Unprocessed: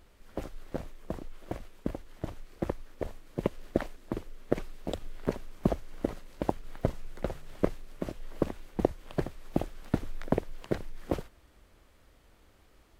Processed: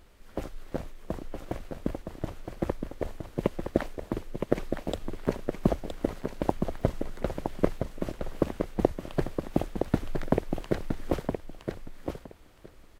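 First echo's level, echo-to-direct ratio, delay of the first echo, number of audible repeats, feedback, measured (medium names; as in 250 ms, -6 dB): -6.0 dB, -6.0 dB, 966 ms, 2, 16%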